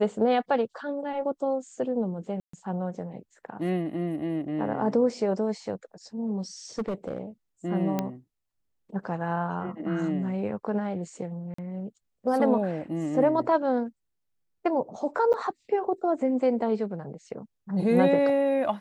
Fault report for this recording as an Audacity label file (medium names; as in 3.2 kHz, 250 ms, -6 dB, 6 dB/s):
2.400000	2.530000	dropout 134 ms
6.780000	7.180000	clipped -25 dBFS
7.990000	7.990000	pop -14 dBFS
11.540000	11.580000	dropout 44 ms
15.330000	15.340000	dropout 9 ms